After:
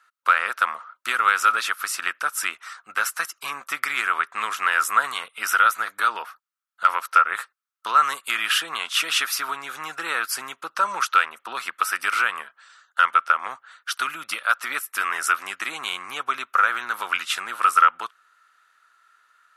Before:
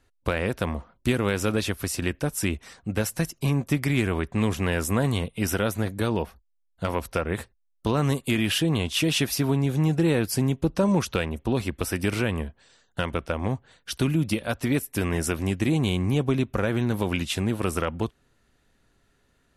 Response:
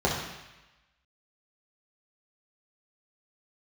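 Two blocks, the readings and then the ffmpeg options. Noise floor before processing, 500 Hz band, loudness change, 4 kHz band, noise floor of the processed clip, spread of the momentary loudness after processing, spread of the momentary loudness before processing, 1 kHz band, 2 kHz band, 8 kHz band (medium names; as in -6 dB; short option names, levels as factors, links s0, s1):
-68 dBFS, -13.5 dB, +3.5 dB, +4.0 dB, -73 dBFS, 13 LU, 7 LU, +14.0 dB, +10.0 dB, +2.5 dB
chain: -af "highpass=f=1300:t=q:w=8,volume=1.33"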